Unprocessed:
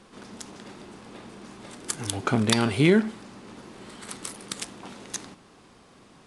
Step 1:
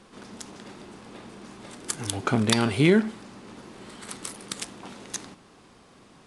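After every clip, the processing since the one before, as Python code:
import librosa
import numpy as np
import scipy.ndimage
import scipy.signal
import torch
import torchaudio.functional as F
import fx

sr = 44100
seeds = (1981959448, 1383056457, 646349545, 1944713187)

y = x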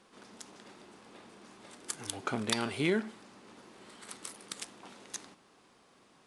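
y = fx.low_shelf(x, sr, hz=180.0, db=-12.0)
y = y * librosa.db_to_amplitude(-7.5)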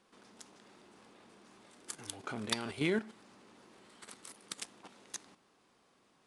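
y = fx.level_steps(x, sr, step_db=10)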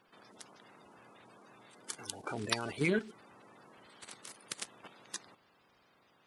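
y = fx.spec_quant(x, sr, step_db=30)
y = y * librosa.db_to_amplitude(2.0)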